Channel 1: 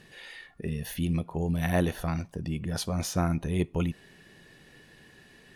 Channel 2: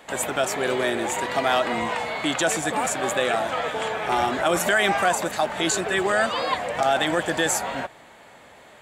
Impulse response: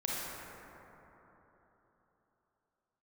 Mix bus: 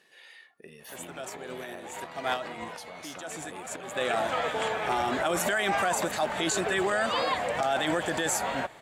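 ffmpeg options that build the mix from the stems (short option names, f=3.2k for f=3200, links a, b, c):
-filter_complex "[0:a]highpass=440,acompressor=threshold=-36dB:ratio=6,volume=-6dB,asplit=2[a][b];[1:a]adelay=800,volume=-1.5dB[c];[b]apad=whole_len=424237[d];[c][d]sidechaincompress=threshold=-60dB:ratio=16:attack=35:release=163[e];[a][e]amix=inputs=2:normalize=0,alimiter=limit=-18dB:level=0:latency=1:release=39"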